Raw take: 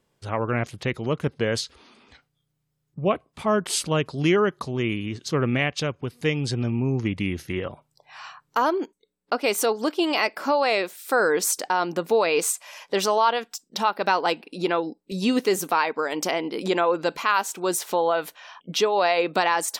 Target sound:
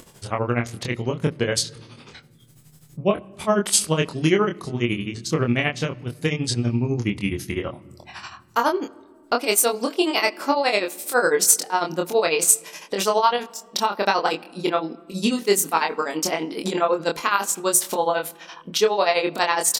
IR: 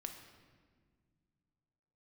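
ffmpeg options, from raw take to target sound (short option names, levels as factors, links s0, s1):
-filter_complex "[0:a]equalizer=f=10000:w=0.54:g=9.5,acompressor=mode=upward:threshold=0.02:ratio=2.5,tremolo=f=12:d=0.88,asplit=2[s0][s1];[s1]adelay=25,volume=0.631[s2];[s0][s2]amix=inputs=2:normalize=0,asplit=2[s3][s4];[1:a]atrim=start_sample=2205,lowshelf=f=430:g=7.5,highshelf=f=7800:g=-7[s5];[s4][s5]afir=irnorm=-1:irlink=0,volume=0.251[s6];[s3][s6]amix=inputs=2:normalize=0,volume=1.19"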